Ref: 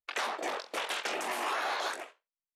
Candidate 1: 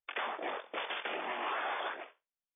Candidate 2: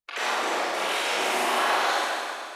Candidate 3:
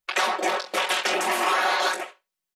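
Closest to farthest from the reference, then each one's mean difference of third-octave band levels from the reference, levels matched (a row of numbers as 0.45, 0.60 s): 3, 2, 1; 1.0, 5.0, 8.0 dB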